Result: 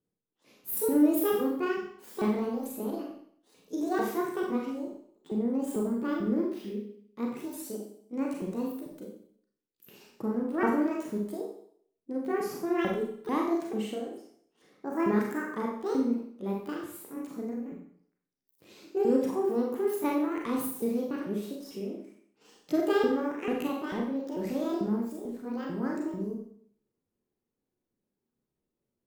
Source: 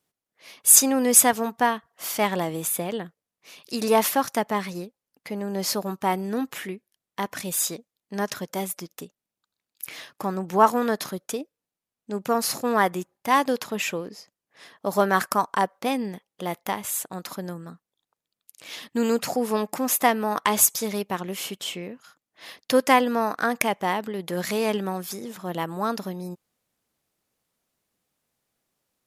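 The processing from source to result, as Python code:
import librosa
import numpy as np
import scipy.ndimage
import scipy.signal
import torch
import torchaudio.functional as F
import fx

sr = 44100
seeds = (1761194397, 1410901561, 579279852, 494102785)

y = fx.pitch_ramps(x, sr, semitones=10.0, every_ms=443)
y = fx.curve_eq(y, sr, hz=(440.0, 630.0, 3400.0), db=(0, -12, -19))
y = fx.rev_schroeder(y, sr, rt60_s=0.61, comb_ms=30, drr_db=-1.0)
y = y * 10.0 ** (-1.5 / 20.0)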